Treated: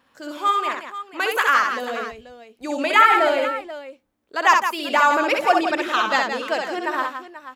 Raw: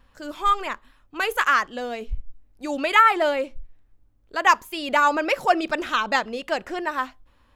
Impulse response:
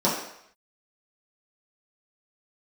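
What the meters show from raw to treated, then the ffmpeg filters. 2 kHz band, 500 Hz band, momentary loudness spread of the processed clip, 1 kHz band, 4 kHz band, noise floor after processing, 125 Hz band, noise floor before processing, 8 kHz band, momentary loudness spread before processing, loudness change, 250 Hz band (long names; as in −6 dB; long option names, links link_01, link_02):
+3.0 dB, +3.0 dB, 16 LU, +3.0 dB, +3.0 dB, −64 dBFS, can't be measured, −59 dBFS, +3.0 dB, 16 LU, +2.5 dB, +2.0 dB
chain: -af "highpass=220,aecho=1:1:64|169|485:0.631|0.376|0.211,volume=1dB"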